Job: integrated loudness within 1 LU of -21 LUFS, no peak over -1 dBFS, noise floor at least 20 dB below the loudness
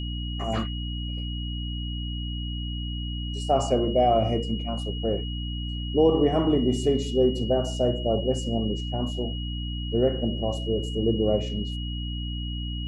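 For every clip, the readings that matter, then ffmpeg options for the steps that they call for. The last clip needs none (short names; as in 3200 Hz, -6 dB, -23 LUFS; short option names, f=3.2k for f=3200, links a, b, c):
hum 60 Hz; harmonics up to 300 Hz; hum level -29 dBFS; steady tone 2900 Hz; tone level -37 dBFS; loudness -26.5 LUFS; peak -9.0 dBFS; loudness target -21.0 LUFS
-> -af "bandreject=f=60:t=h:w=6,bandreject=f=120:t=h:w=6,bandreject=f=180:t=h:w=6,bandreject=f=240:t=h:w=6,bandreject=f=300:t=h:w=6"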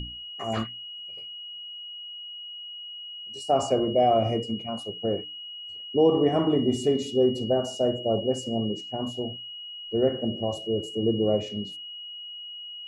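hum none; steady tone 2900 Hz; tone level -37 dBFS
-> -af "bandreject=f=2.9k:w=30"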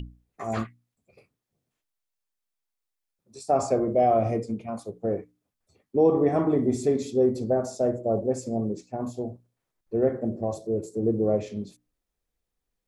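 steady tone none; loudness -26.0 LUFS; peak -10.5 dBFS; loudness target -21.0 LUFS
-> -af "volume=5dB"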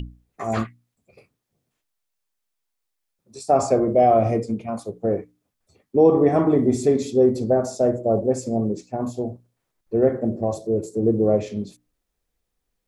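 loudness -21.5 LUFS; peak -5.5 dBFS; noise floor -79 dBFS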